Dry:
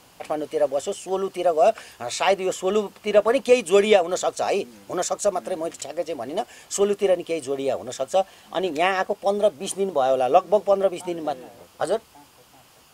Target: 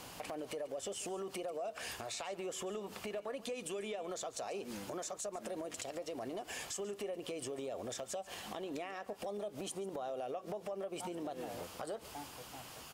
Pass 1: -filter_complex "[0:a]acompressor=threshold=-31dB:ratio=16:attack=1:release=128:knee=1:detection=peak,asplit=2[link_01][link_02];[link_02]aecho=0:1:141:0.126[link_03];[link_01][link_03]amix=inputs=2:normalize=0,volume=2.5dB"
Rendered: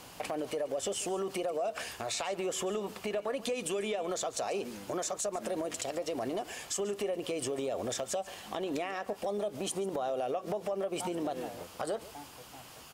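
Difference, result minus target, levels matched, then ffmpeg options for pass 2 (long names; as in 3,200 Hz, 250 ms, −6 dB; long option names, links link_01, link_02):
downward compressor: peak gain reduction −7.5 dB
-filter_complex "[0:a]acompressor=threshold=-39dB:ratio=16:attack=1:release=128:knee=1:detection=peak,asplit=2[link_01][link_02];[link_02]aecho=0:1:141:0.126[link_03];[link_01][link_03]amix=inputs=2:normalize=0,volume=2.5dB"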